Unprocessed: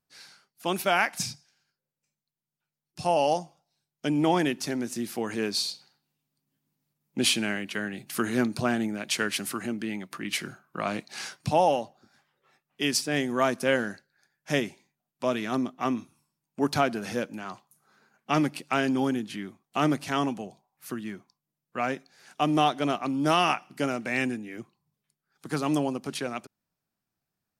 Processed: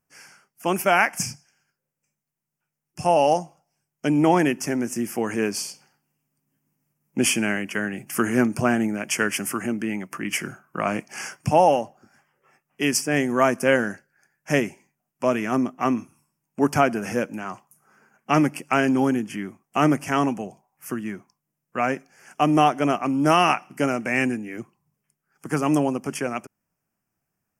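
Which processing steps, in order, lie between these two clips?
Butterworth band-reject 3,900 Hz, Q 1.6
level +5.5 dB

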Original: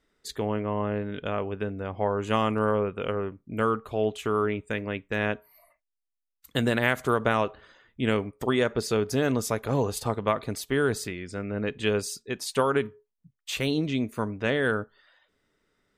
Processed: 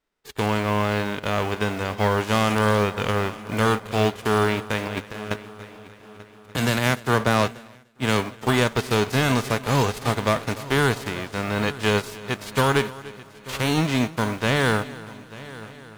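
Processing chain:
spectral envelope flattened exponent 0.3
low-pass filter 1,800 Hz 6 dB per octave
leveller curve on the samples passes 2
0:04.86–0:05.31: compressor whose output falls as the input rises −30 dBFS, ratio −0.5
echo machine with several playback heads 296 ms, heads first and third, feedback 52%, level −19 dB
0:06.56–0:08.47: multiband upward and downward expander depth 100%

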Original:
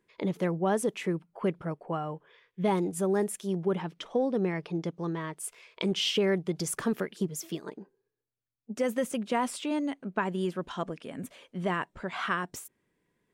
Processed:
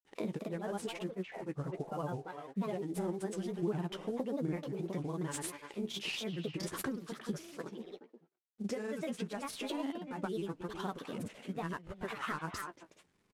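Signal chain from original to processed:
variable-slope delta modulation 64 kbit/s
low-shelf EQ 390 Hz +3 dB
far-end echo of a speakerphone 320 ms, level −10 dB
downward compressor 6 to 1, threshold −33 dBFS, peak gain reduction 12.5 dB
flanger 1.6 Hz, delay 9 ms, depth 6.3 ms, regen +42%
granular cloud, pitch spread up and down by 3 semitones
level +3.5 dB

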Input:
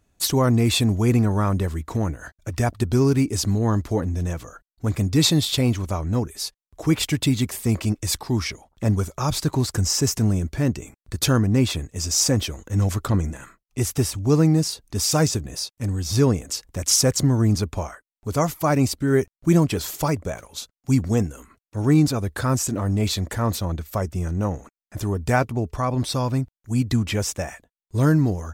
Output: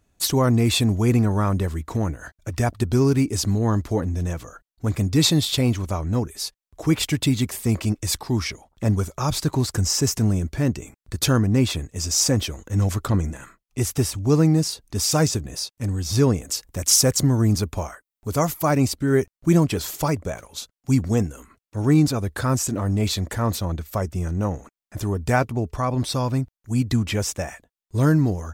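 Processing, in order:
0:16.43–0:18.71: high-shelf EQ 11,000 Hz +8.5 dB

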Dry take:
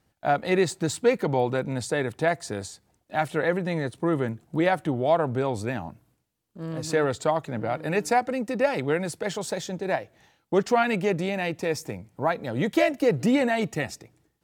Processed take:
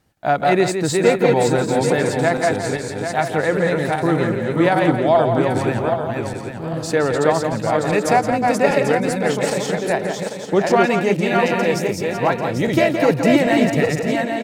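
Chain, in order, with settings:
feedback delay that plays each chunk backwards 396 ms, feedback 52%, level −2.5 dB
slap from a distant wall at 29 metres, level −7 dB
level +5 dB

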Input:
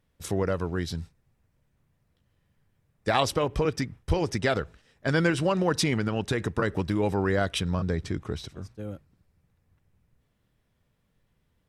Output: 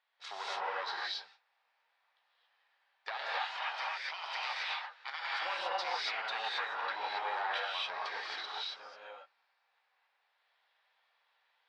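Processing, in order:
one-sided soft clipper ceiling −24 dBFS
0:03.17–0:05.39: gate on every frequency bin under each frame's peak −15 dB weak
elliptic band-pass filter 780–4,400 Hz, stop band 80 dB
downward compressor 12 to 1, threshold −38 dBFS, peak gain reduction 14 dB
reverb whose tail is shaped and stops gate 300 ms rising, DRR −6.5 dB

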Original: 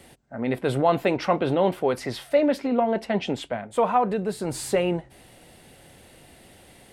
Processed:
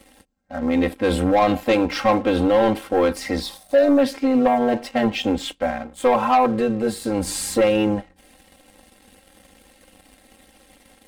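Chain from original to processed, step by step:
gain on a spectral selection 0:02.13–0:02.49, 1,200–3,400 Hz −11 dB
leveller curve on the samples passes 2
time stretch by overlap-add 1.6×, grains 20 ms

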